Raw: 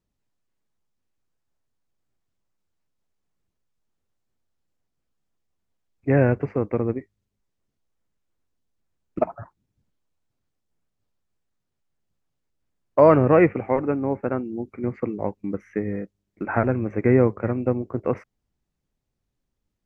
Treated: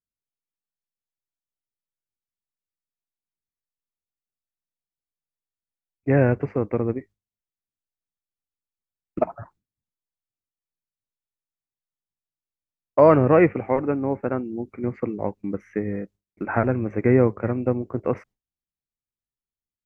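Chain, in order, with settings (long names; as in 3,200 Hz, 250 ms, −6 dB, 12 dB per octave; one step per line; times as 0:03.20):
noise gate with hold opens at −48 dBFS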